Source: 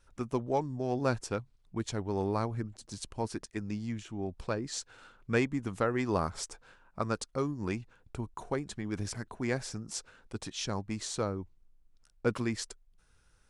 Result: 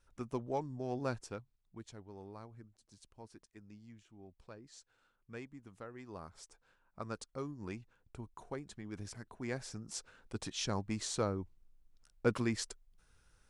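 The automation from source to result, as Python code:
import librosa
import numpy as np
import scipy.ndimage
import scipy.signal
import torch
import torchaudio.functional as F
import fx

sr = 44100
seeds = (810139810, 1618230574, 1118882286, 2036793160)

y = fx.gain(x, sr, db=fx.line((0.98, -6.5), (2.18, -19.0), (6.07, -19.0), (7.15, -9.5), (9.2, -9.5), (10.45, -1.5)))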